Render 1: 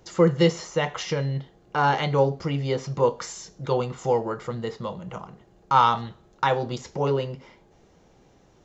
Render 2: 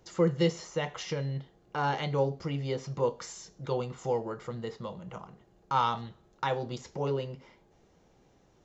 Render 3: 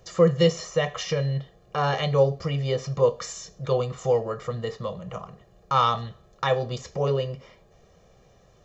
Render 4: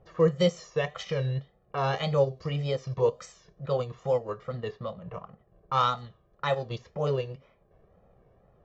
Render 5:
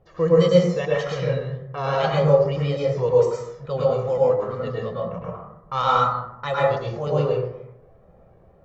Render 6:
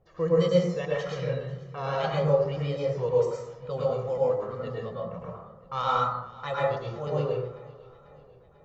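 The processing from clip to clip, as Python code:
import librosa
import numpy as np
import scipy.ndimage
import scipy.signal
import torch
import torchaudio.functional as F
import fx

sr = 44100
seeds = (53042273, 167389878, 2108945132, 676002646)

y1 = fx.dynamic_eq(x, sr, hz=1200.0, q=0.85, threshold_db=-34.0, ratio=4.0, max_db=-3)
y1 = F.gain(torch.from_numpy(y1), -6.5).numpy()
y2 = y1 + 0.67 * np.pad(y1, (int(1.7 * sr / 1000.0), 0))[:len(y1)]
y2 = F.gain(torch.from_numpy(y2), 5.5).numpy()
y3 = fx.wow_flutter(y2, sr, seeds[0], rate_hz=2.1, depth_cents=100.0)
y3 = fx.env_lowpass(y3, sr, base_hz=1300.0, full_db=-20.0)
y3 = fx.transient(y3, sr, attack_db=-2, sustain_db=-7)
y3 = F.gain(torch.from_numpy(y3), -3.0).numpy()
y4 = fx.rev_plate(y3, sr, seeds[1], rt60_s=0.85, hf_ratio=0.35, predelay_ms=95, drr_db=-5.5)
y5 = fx.echo_feedback(y4, sr, ms=493, feedback_pct=57, wet_db=-21)
y5 = F.gain(torch.from_numpy(y5), -6.5).numpy()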